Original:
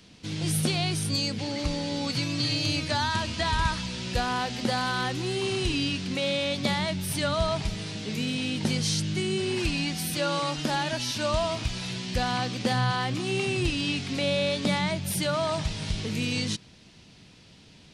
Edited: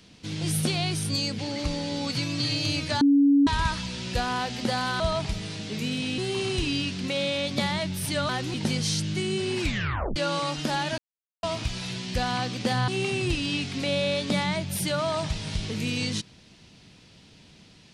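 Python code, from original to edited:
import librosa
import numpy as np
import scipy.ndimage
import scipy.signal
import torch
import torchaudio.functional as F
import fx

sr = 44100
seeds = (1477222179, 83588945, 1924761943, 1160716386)

y = fx.edit(x, sr, fx.bleep(start_s=3.01, length_s=0.46, hz=282.0, db=-15.0),
    fx.swap(start_s=5.0, length_s=0.25, other_s=7.36, other_length_s=1.18),
    fx.tape_stop(start_s=9.62, length_s=0.54),
    fx.silence(start_s=10.98, length_s=0.45),
    fx.cut(start_s=12.88, length_s=0.35), tone=tone)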